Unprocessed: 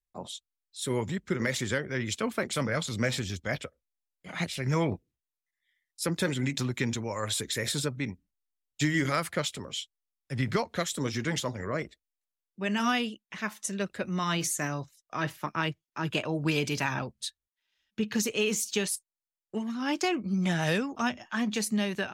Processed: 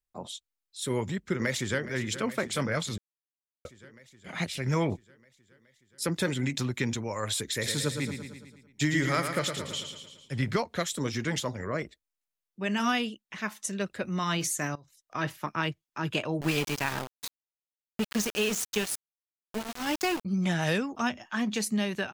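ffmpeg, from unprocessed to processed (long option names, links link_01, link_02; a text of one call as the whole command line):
ffmpeg -i in.wav -filter_complex "[0:a]asplit=2[link_01][link_02];[link_02]afade=type=in:start_time=1.31:duration=0.01,afade=type=out:start_time=1.81:duration=0.01,aecho=0:1:420|840|1260|1680|2100|2520|2940|3360|3780|4200|4620:0.223872|0.167904|0.125928|0.094446|0.0708345|0.0531259|0.0398444|0.0298833|0.0224125|0.0168094|0.012607[link_03];[link_01][link_03]amix=inputs=2:normalize=0,asettb=1/sr,asplit=3[link_04][link_05][link_06];[link_04]atrim=end=7.474[link_07];[link_05]atrim=start=7.47:end=10.46,asetpts=PTS-STARTPTS,afade=type=in:duration=0.004:curve=qsin,afade=type=out:start_time=2.986:duration=0.004:curve=qsin,aecho=1:1:112|224|336|448|560|672|784:0.447|0.259|0.15|0.0872|0.0505|0.0293|0.017,atrim=end_sample=131859[link_08];[link_06]atrim=start=10.456[link_09];[link_07][link_08]acrossfade=duration=0.004:curve1=hsin:curve2=qsin[link_10];[link_10][link_09]acrossfade=duration=0.004:curve1=qsin:curve2=hsin,asettb=1/sr,asplit=3[link_11][link_12][link_13];[link_11]atrim=end=14.754[link_14];[link_12]atrim=start=14.75:end=15.15,asetpts=PTS-STARTPTS,afade=type=in:duration=0.004:curve=qsin,afade=type=out:start_time=0.396:duration=0.004:curve=qsin,acompressor=threshold=-48dB:ratio=16:attack=3.2:release=140:knee=1:detection=peak[link_15];[link_13]atrim=start=15.146[link_16];[link_14][link_15]acrossfade=duration=0.004:curve1=hsin:curve2=qsin[link_17];[link_17][link_16]acrossfade=duration=0.004:curve1=qsin:curve2=hsin,asettb=1/sr,asplit=3[link_18][link_19][link_20];[link_18]atrim=end=16.414[link_21];[link_19]atrim=start=16.41:end=20.25,asetpts=PTS-STARTPTS,afade=type=in:duration=0.004:curve=qsin,afade=type=out:start_time=3.836:duration=0.004:curve=qsin,aeval=exprs='val(0)*gte(abs(val(0)),0.0316)':channel_layout=same[link_22];[link_20]atrim=start=20.246[link_23];[link_21][link_22]acrossfade=duration=0.004:curve1=hsin:curve2=qsin[link_24];[link_24][link_23]acrossfade=duration=0.004:curve1=qsin:curve2=hsin,asplit=3[link_25][link_26][link_27];[link_25]atrim=end=2.98,asetpts=PTS-STARTPTS,afade=type=out:start_time=2.976:duration=0.004:curve=hsin[link_28];[link_26]atrim=start=2.98:end=3.65,asetpts=PTS-STARTPTS,volume=0[link_29];[link_27]atrim=start=3.65,asetpts=PTS-STARTPTS,afade=type=in:duration=0.004:curve=hsin[link_30];[link_28][link_29][link_30]concat=n=3:v=0:a=1" out.wav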